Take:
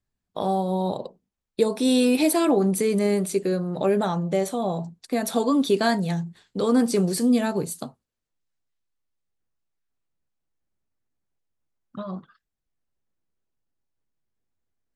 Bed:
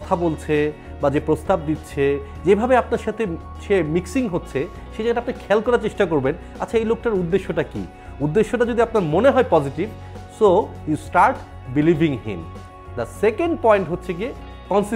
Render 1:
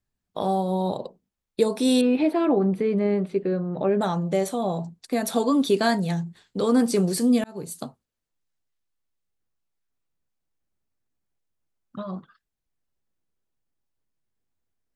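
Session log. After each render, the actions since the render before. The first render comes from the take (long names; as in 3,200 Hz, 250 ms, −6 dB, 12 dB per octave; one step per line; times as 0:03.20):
0:02.01–0:04.01: high-frequency loss of the air 410 metres
0:07.44–0:07.84: fade in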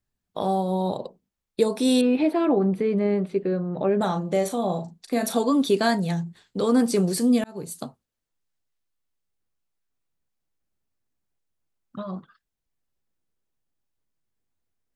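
0:03.97–0:05.37: double-tracking delay 38 ms −9 dB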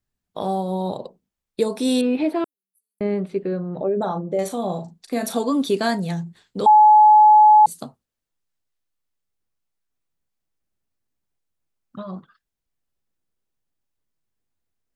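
0:02.44–0:03.01: inverse Chebyshev high-pass filter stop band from 2,400 Hz, stop band 80 dB
0:03.81–0:04.39: spectral envelope exaggerated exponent 1.5
0:06.66–0:07.66: beep over 851 Hz −7.5 dBFS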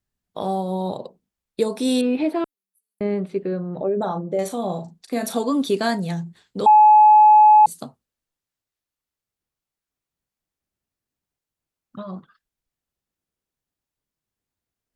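harmonic generator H 3 −36 dB, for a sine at −7 dBFS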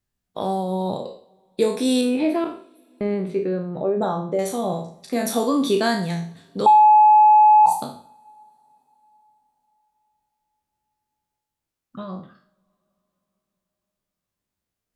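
peak hold with a decay on every bin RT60 0.46 s
coupled-rooms reverb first 0.45 s, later 4.6 s, from −21 dB, DRR 18.5 dB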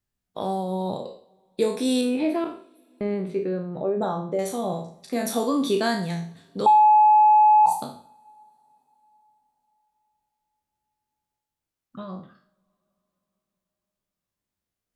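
level −3 dB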